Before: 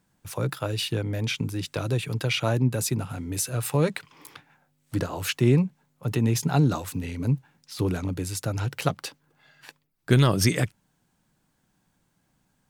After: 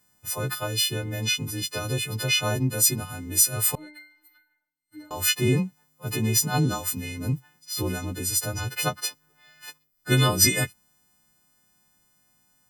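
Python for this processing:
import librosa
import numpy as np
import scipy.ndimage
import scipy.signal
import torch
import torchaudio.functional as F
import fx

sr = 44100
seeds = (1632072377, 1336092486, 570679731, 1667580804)

y = fx.freq_snap(x, sr, grid_st=3)
y = fx.comb_fb(y, sr, f0_hz=300.0, decay_s=0.53, harmonics='all', damping=0.0, mix_pct=100, at=(3.75, 5.11))
y = y * librosa.db_to_amplitude(-2.0)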